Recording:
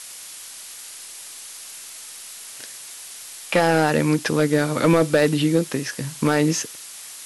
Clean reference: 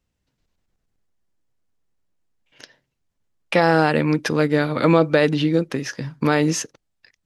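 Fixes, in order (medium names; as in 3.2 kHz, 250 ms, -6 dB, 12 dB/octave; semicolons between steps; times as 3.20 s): clip repair -9 dBFS; de-click; noise print and reduce 30 dB; trim 0 dB, from 6.76 s +5 dB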